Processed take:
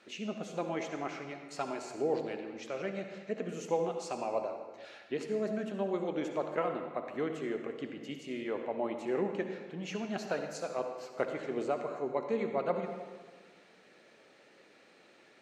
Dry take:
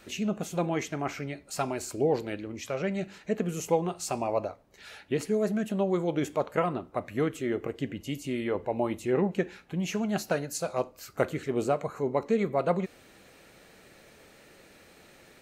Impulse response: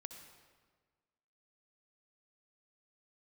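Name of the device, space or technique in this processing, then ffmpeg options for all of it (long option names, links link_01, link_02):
supermarket ceiling speaker: -filter_complex "[0:a]highpass=240,lowpass=5300[link_01];[1:a]atrim=start_sample=2205[link_02];[link_01][link_02]afir=irnorm=-1:irlink=0"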